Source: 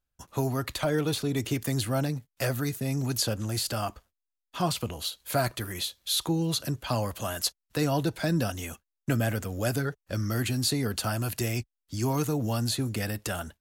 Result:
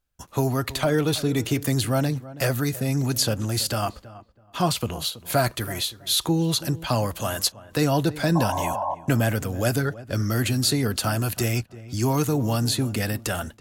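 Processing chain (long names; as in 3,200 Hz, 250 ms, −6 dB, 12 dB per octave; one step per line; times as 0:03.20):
sound drawn into the spectrogram noise, 0:08.35–0:08.95, 550–1,100 Hz −32 dBFS
feedback echo with a low-pass in the loop 326 ms, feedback 22%, low-pass 1,500 Hz, level −16.5 dB
level +5 dB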